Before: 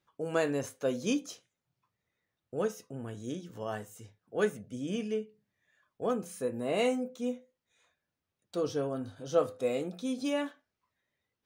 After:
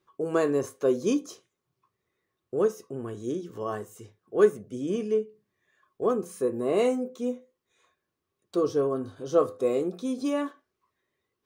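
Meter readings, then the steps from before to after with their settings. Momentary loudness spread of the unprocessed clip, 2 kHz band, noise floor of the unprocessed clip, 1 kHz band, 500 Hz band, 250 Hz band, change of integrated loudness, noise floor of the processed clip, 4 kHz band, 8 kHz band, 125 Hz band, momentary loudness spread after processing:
12 LU, -0.5 dB, under -85 dBFS, +4.5 dB, +6.5 dB, +5.0 dB, +6.0 dB, -83 dBFS, -2.0 dB, +1.0 dB, +2.0 dB, 11 LU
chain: small resonant body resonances 380/1100 Hz, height 13 dB, ringing for 40 ms; dynamic bell 2.8 kHz, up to -5 dB, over -51 dBFS, Q 1.1; trim +1.5 dB

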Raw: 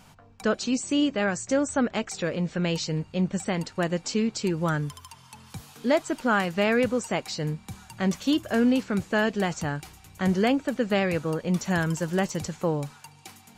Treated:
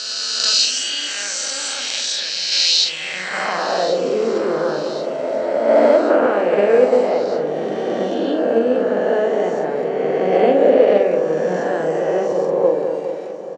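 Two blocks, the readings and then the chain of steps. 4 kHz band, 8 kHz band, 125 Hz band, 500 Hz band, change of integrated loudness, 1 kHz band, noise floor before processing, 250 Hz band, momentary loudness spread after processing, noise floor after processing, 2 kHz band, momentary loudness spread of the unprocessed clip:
+16.0 dB, +11.5 dB, -7.0 dB, +13.5 dB, +9.0 dB, +9.0 dB, -53 dBFS, +1.0 dB, 9 LU, -27 dBFS, +4.5 dB, 9 LU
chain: reverse spectral sustain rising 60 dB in 2.87 s; three-band isolator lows -21 dB, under 150 Hz, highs -21 dB, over 7.4 kHz; on a send: feedback echo behind a low-pass 206 ms, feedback 59%, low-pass 1.1 kHz, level -6 dB; on the sum: band-pass sweep 4.4 kHz -> 490 Hz, 2.68–3.99 s; in parallel at 0 dB: level held to a coarse grid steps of 12 dB; on the sum: treble shelf 3.1 kHz +11.5 dB; doubling 44 ms -4.5 dB; feedback delay 1084 ms, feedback 44%, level -16 dB; trim +4.5 dB

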